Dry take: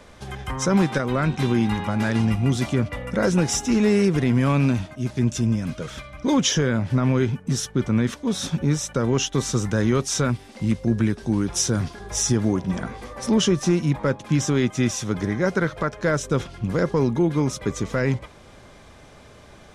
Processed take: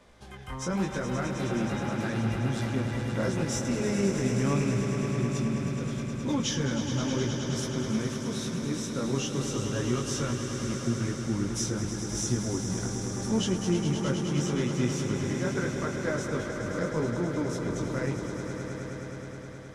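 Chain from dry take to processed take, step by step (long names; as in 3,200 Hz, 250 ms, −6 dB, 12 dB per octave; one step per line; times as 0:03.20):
chorus effect 0.81 Hz, delay 16 ms, depth 6.9 ms
echo that builds up and dies away 105 ms, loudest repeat 5, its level −9.5 dB
level −7 dB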